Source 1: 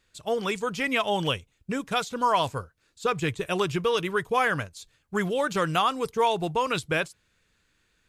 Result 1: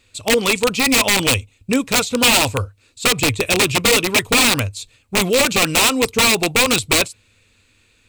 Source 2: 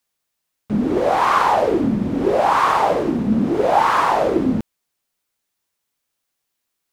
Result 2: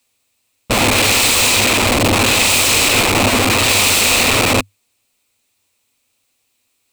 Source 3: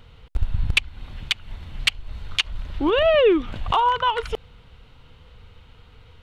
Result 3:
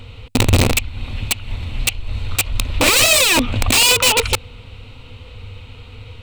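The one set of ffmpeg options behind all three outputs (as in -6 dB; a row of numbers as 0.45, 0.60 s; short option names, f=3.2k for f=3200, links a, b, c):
-af "acontrast=90,aeval=exprs='(mod(4.22*val(0)+1,2)-1)/4.22':c=same,equalizer=f=100:t=o:w=0.33:g=12,equalizer=f=160:t=o:w=0.33:g=-7,equalizer=f=250:t=o:w=0.33:g=7,equalizer=f=500:t=o:w=0.33:g=4,equalizer=f=1.6k:t=o:w=0.33:g=-6,equalizer=f=2.5k:t=o:w=0.33:g=9,equalizer=f=4k:t=o:w=0.33:g=5,equalizer=f=8k:t=o:w=0.33:g=7,volume=1.5dB"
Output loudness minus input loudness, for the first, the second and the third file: +11.5, +6.0, +7.0 LU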